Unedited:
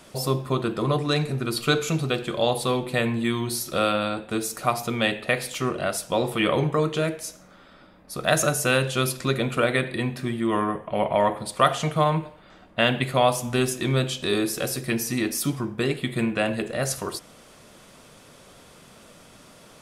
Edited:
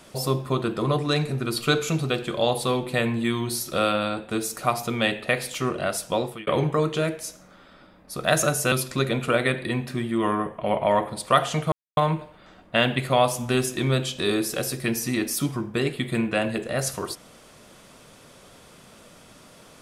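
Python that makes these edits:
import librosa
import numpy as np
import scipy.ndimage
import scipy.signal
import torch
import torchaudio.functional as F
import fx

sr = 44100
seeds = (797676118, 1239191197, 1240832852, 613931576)

y = fx.edit(x, sr, fx.fade_out_span(start_s=6.13, length_s=0.34),
    fx.cut(start_s=8.72, length_s=0.29),
    fx.insert_silence(at_s=12.01, length_s=0.25), tone=tone)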